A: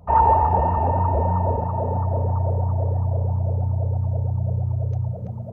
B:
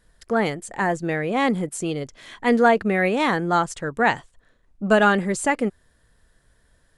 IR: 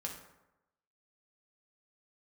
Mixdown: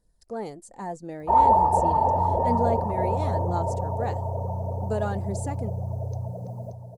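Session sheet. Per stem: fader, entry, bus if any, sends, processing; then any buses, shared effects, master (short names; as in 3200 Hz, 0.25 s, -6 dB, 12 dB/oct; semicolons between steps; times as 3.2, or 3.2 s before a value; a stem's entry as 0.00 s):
-2.0 dB, 1.20 s, send -11 dB, echo send -7.5 dB, tone controls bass -9 dB, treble +11 dB
-11.0 dB, 0.00 s, no send, no echo send, notch 1100 Hz, Q 15; phaser 0.56 Hz, delay 4.6 ms, feedback 34%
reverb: on, RT60 0.95 s, pre-delay 3 ms
echo: feedback echo 0.579 s, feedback 48%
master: band shelf 2100 Hz -12.5 dB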